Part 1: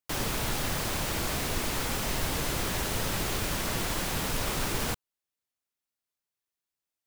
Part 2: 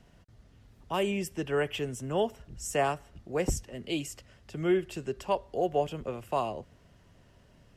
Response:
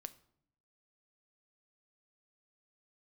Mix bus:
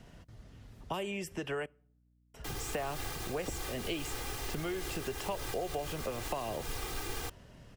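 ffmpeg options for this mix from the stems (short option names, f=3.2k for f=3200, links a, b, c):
-filter_complex "[0:a]aecho=1:1:2.5:0.96,adelay=2350,volume=-11.5dB[a];[1:a]acompressor=threshold=-33dB:ratio=6,acrossover=split=520|2600[b][c][d];[b]acompressor=threshold=-44dB:ratio=4[e];[c]acompressor=threshold=-41dB:ratio=4[f];[d]acompressor=threshold=-50dB:ratio=4[g];[e][f][g]amix=inputs=3:normalize=0,volume=3dB,asplit=3[h][i][j];[h]atrim=end=1.66,asetpts=PTS-STARTPTS,afade=t=out:st=1.656:d=0.004:c=hsin[k];[i]atrim=start=1.66:end=2.34,asetpts=PTS-STARTPTS,volume=0[l];[j]atrim=start=2.34,asetpts=PTS-STARTPTS,afade=t=in:d=0.004:c=hsin[m];[k][l][m]concat=n=3:v=0:a=1,asplit=3[n][o][p];[o]volume=-8.5dB[q];[p]apad=whole_len=415200[r];[a][r]sidechaincompress=threshold=-41dB:ratio=8:attack=8.6:release=144[s];[2:a]atrim=start_sample=2205[t];[q][t]afir=irnorm=-1:irlink=0[u];[s][n][u]amix=inputs=3:normalize=0,aeval=exprs='val(0)+0.000398*(sin(2*PI*60*n/s)+sin(2*PI*2*60*n/s)/2+sin(2*PI*3*60*n/s)/3+sin(2*PI*4*60*n/s)/4+sin(2*PI*5*60*n/s)/5)':c=same"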